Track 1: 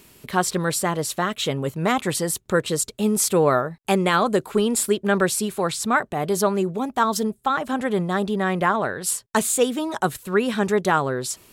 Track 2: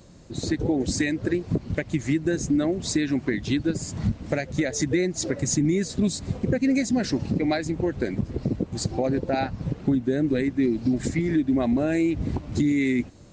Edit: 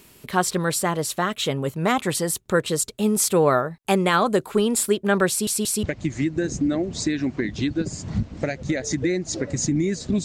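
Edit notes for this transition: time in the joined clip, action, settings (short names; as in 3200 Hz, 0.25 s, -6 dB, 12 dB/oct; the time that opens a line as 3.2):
track 1
5.29 stutter in place 0.18 s, 3 plays
5.83 switch to track 2 from 1.72 s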